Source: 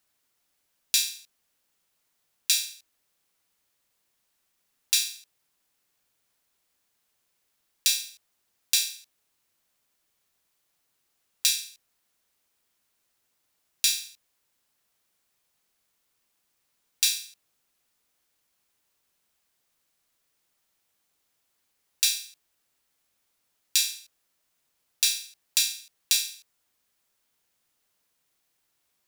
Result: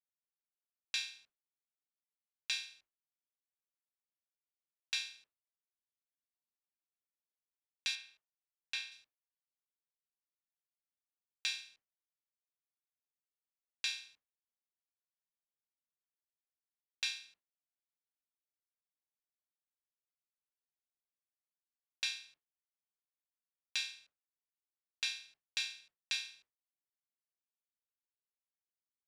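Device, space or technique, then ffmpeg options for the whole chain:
hearing-loss simulation: -filter_complex "[0:a]asettb=1/sr,asplit=3[a][b][c];[a]atrim=end=7.954[d];[b]atrim=start=7.95:end=8.92,asetpts=PTS-STARTPTS,afade=t=in:d=0.004:c=qsin,afade=t=out:st=0.966:d=0.004:c=qsin,bass=f=250:g=-6,treble=f=4k:g=-8[e];[c]atrim=start=8.916[f];[d][e]acrossfade=d=0.004:c1=hsin:c2=qsin[g];[g][f]acrossfade=d=0.004:c1=qsin:c2=hsin,lowpass=2.4k,agate=range=-33dB:threshold=-56dB:ratio=3:detection=peak,volume=-2dB"

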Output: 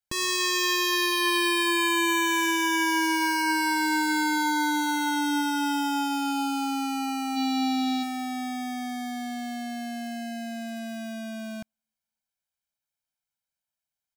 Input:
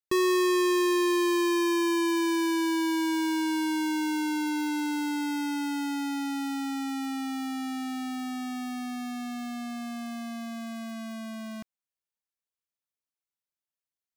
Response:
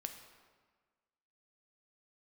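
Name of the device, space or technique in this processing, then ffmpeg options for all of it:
keyed gated reverb: -filter_complex "[0:a]asplit=3[a][b][c];[a]afade=t=out:st=7.35:d=0.02[d];[b]equalizer=f=400:t=o:w=0.67:g=11,equalizer=f=1.6k:t=o:w=0.67:g=-6,equalizer=f=4k:t=o:w=0.67:g=10,equalizer=f=10k:t=o:w=0.67:g=-9,afade=t=in:st=7.35:d=0.02,afade=t=out:st=8.02:d=0.02[e];[c]afade=t=in:st=8.02:d=0.02[f];[d][e][f]amix=inputs=3:normalize=0,aecho=1:1:1.3:0.99,asplit=3[g][h][i];[1:a]atrim=start_sample=2205[j];[h][j]afir=irnorm=-1:irlink=0[k];[i]apad=whole_len=624717[l];[k][l]sidechaingate=range=-43dB:threshold=-29dB:ratio=16:detection=peak,volume=0dB[m];[g][m]amix=inputs=2:normalize=0"

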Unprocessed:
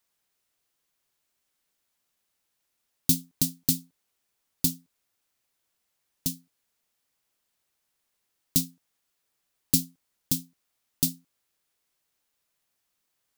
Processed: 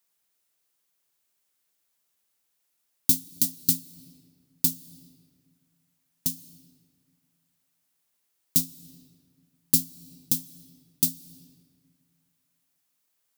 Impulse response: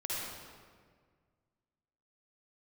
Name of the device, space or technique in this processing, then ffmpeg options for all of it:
ducked reverb: -filter_complex "[0:a]highshelf=f=7k:g=7,asettb=1/sr,asplit=3[a][b][c];[a]atrim=end=3.104[d];[b]atrim=start=3.1:end=3.65,asetpts=PTS-STARTPTS,afade=t=in:d=0.004:c=qsin,afade=t=out:st=0.546:d=0.004:c=qsin,highpass=200[e];[c]atrim=start=3.646[f];[d][e]acrossfade=d=0.004:c1=hsin:c2=qsin[g];[g][f]acrossfade=d=0.004:c1=qsin:c2=hsin,asplit=3[h][i][j];[1:a]atrim=start_sample=2205[k];[i][k]afir=irnorm=-1:irlink=0[l];[j]apad=whole_len=590042[m];[l][m]sidechaincompress=threshold=-29dB:ratio=8:attack=35:release=307,volume=-15dB[n];[h][n]amix=inputs=2:normalize=0,highpass=84,volume=-3dB"

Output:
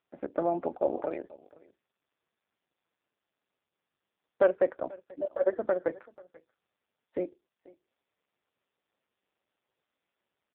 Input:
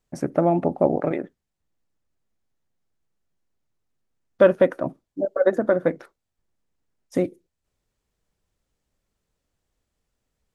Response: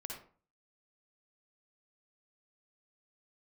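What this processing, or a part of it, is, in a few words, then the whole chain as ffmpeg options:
satellite phone: -af "highpass=370,lowpass=3.2k,aecho=1:1:487:0.075,volume=-6dB" -ar 8000 -c:a libopencore_amrnb -b:a 5150

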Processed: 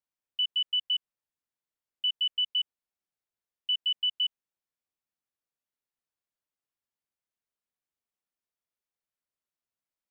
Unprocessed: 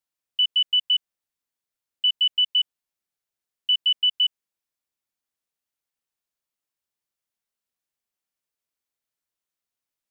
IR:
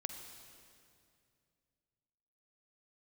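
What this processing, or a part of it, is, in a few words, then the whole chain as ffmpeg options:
behind a face mask: -af "highshelf=f=2.8k:g=-7.5,volume=-3.5dB"

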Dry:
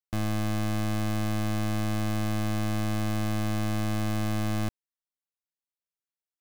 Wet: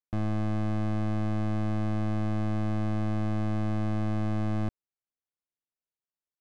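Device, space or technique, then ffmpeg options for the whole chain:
through cloth: -af "lowpass=7.8k,highshelf=f=2.2k:g=-16"

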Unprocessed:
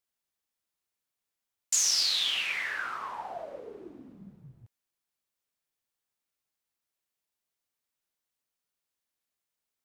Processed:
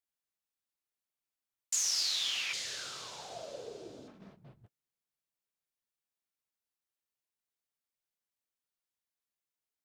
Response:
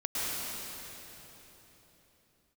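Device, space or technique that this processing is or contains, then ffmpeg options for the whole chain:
keyed gated reverb: -filter_complex "[0:a]asplit=3[a][b][c];[1:a]atrim=start_sample=2205[d];[b][d]afir=irnorm=-1:irlink=0[e];[c]apad=whole_len=434257[f];[e][f]sidechaingate=range=-44dB:threshold=-50dB:ratio=16:detection=peak,volume=-14dB[g];[a][g]amix=inputs=2:normalize=0,asettb=1/sr,asplit=3[h][i][j];[h]atrim=end=2.534[k];[i]atrim=start=2.53:end=4.08,asetpts=PTS-STARTPTS,afade=t=in:d=0.004:c=qsin,afade=t=out:st=1.546:d=0.004:c=qsin,equalizer=f=125:t=o:w=1:g=11,equalizer=f=250:t=o:w=1:g=-3,equalizer=f=500:t=o:w=1:g=7,equalizer=f=1k:t=o:w=1:g=-9,equalizer=f=2k:t=o:w=1:g=-11,equalizer=f=4k:t=o:w=1:g=5,equalizer=f=8k:t=o:w=1:g=9[l];[j]atrim=start=4.076[m];[k][l]acrossfade=d=0.004:c1=hsin:c2=qsin[n];[n][m]acrossfade=d=0.004:c1=qsin:c2=hsin,volume=-7dB"

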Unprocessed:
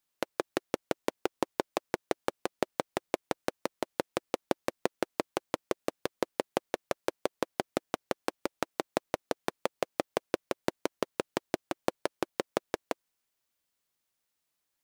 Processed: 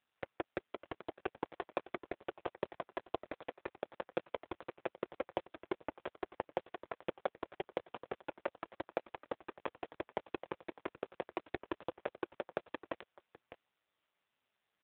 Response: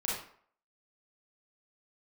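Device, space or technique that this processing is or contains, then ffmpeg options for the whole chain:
satellite phone: -filter_complex "[0:a]asettb=1/sr,asplit=3[a][b][c];[a]atrim=end=7.824[d];[b]atrim=start=7.82:end=9.22,asetpts=PTS-STARTPTS,afade=t=in:d=0.004:c=qsin,afade=t=out:st=1.396:d=0.004:c=qsin,highpass=170[e];[c]atrim=start=9.216[f];[d][e]acrossfade=d=0.004:c1=hsin:c2=qsin[g];[g][f]acrossfade=d=0.004:c1=qsin:c2=hsin,highpass=360,lowpass=3.1k,aecho=1:1:607:0.0841,volume=9.5dB" -ar 8000 -c:a libopencore_amrnb -b:a 5900

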